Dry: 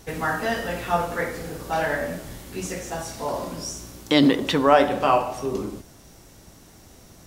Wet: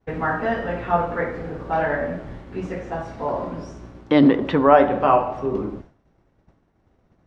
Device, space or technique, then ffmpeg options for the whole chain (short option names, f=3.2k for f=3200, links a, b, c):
hearing-loss simulation: -af "lowpass=1.7k,agate=range=-33dB:threshold=-39dB:ratio=3:detection=peak,volume=3dB"